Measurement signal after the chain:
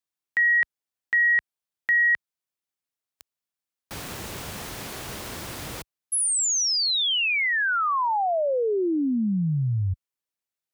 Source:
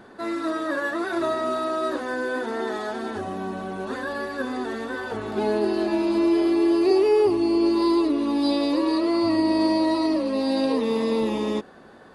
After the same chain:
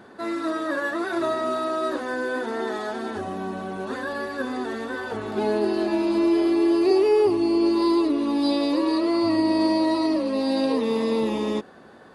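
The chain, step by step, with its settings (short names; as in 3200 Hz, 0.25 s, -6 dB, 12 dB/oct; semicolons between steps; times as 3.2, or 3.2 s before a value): HPF 57 Hz 12 dB/oct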